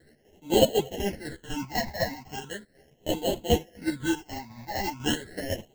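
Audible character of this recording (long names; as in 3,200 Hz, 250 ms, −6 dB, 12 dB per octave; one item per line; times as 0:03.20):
aliases and images of a low sample rate 1,200 Hz, jitter 0%
phaser sweep stages 8, 0.38 Hz, lowest notch 410–1,700 Hz
chopped level 4 Hz, depth 60%, duty 55%
a shimmering, thickened sound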